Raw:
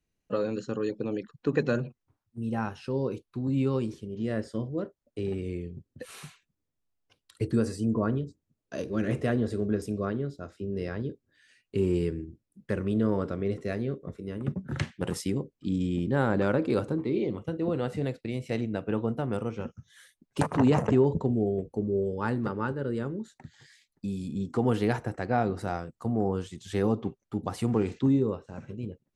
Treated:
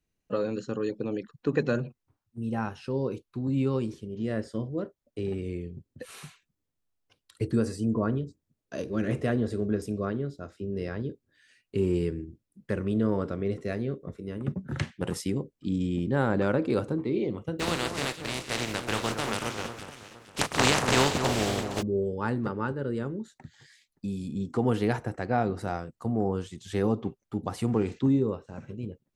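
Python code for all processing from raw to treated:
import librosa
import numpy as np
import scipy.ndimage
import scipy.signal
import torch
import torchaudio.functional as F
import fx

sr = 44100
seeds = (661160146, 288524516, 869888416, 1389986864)

y = fx.spec_flatten(x, sr, power=0.28, at=(17.59, 21.81), fade=0.02)
y = fx.air_absorb(y, sr, metres=52.0, at=(17.59, 21.81), fade=0.02)
y = fx.echo_alternate(y, sr, ms=232, hz=1600.0, feedback_pct=56, wet_db=-7, at=(17.59, 21.81), fade=0.02)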